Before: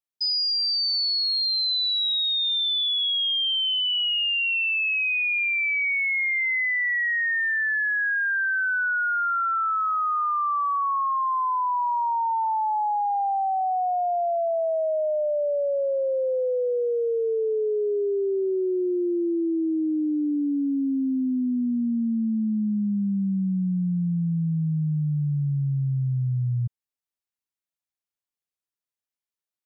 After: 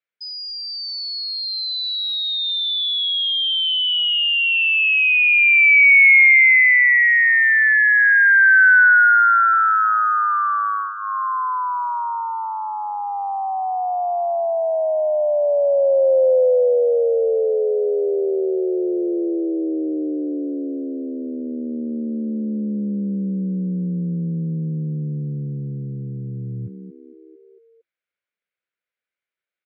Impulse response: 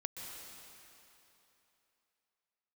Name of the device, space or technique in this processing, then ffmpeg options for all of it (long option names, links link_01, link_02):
frequency-shifting delay pedal into a guitar cabinet: -filter_complex "[0:a]asettb=1/sr,asplit=3[link_01][link_02][link_03];[link_01]atrim=end=2.374[link_04];[link_02]atrim=start=2.37:end=3.02,asetpts=PTS-STARTPTS,afade=type=in:duration=0.004:curve=qsin,afade=type=out:start_time=0.646:duration=0.004:curve=qsin,highpass=720[link_05];[link_03]atrim=start=3.016[link_06];[link_04][link_05]acrossfade=duration=0.004:curve1=hsin:curve2=qsin[link_07];[link_07][link_06]acrossfade=duration=0.004:curve1=qsin:curve2=hsin,asplit=6[link_08][link_09][link_10][link_11][link_12][link_13];[link_09]adelay=227,afreqshift=67,volume=-14.5dB[link_14];[link_10]adelay=454,afreqshift=134,volume=-20dB[link_15];[link_11]adelay=681,afreqshift=201,volume=-25.5dB[link_16];[link_12]adelay=908,afreqshift=268,volume=-31dB[link_17];[link_13]adelay=1135,afreqshift=335,volume=-36.6dB[link_18];[link_08][link_14][link_15][link_16][link_17][link_18]amix=inputs=6:normalize=0,highpass=110,equalizer=frequency=130:width_type=q:width=4:gain=-7,equalizer=frequency=260:width_type=q:width=4:gain=-8,equalizer=frequency=520:width_type=q:width=4:gain=7,equalizer=frequency=860:width_type=q:width=4:gain=-7,equalizer=frequency=1500:width_type=q:width=4:gain=9,equalizer=frequency=2200:width_type=q:width=4:gain=10,lowpass=frequency=3700:width=0.5412,lowpass=frequency=3700:width=1.3066,bandreject=frequency=1100:width=18,volume=3.5dB"